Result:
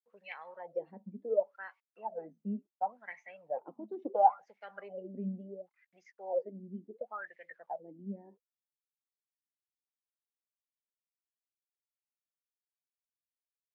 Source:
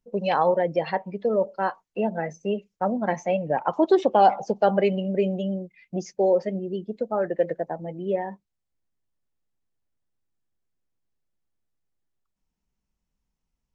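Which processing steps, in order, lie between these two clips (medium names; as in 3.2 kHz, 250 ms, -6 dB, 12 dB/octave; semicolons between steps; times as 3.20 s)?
dynamic bell 300 Hz, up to -6 dB, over -45 dBFS, Q 5.1; bit crusher 10-bit; wah-wah 0.71 Hz 210–2200 Hz, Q 12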